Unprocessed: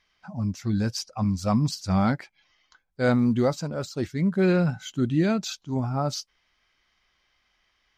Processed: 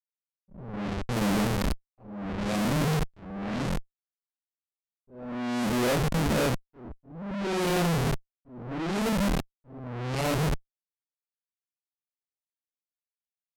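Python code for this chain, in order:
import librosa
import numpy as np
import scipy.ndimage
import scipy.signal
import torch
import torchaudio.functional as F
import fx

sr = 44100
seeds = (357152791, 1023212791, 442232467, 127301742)

y = scipy.ndimage.median_filter(x, 41, mode='constant')
y = fx.hum_notches(y, sr, base_hz=50, count=4)
y = fx.stretch_grains(y, sr, factor=1.7, grain_ms=119.0)
y = fx.graphic_eq_31(y, sr, hz=(1250, 2500, 4000, 6300), db=(-3, 6, 9, -4))
y = fx.schmitt(y, sr, flips_db=-40.0)
y = fx.auto_swell(y, sr, attack_ms=788.0)
y = fx.peak_eq(y, sr, hz=100.0, db=-9.5, octaves=0.47)
y = fx.env_lowpass(y, sr, base_hz=430.0, full_db=-30.0)
y = y * librosa.db_to_amplitude(5.0)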